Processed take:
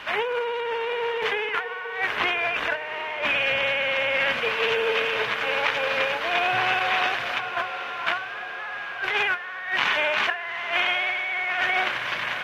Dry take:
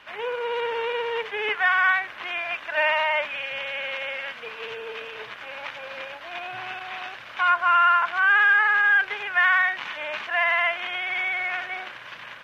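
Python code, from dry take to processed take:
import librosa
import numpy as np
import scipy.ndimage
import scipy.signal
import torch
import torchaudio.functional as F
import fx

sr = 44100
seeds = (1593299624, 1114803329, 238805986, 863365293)

y = fx.low_shelf(x, sr, hz=360.0, db=8.0, at=(2.17, 4.4))
y = fx.over_compress(y, sr, threshold_db=-33.0, ratio=-1.0)
y = fx.echo_diffused(y, sr, ms=865, feedback_pct=54, wet_db=-11)
y = y * librosa.db_to_amplitude(5.0)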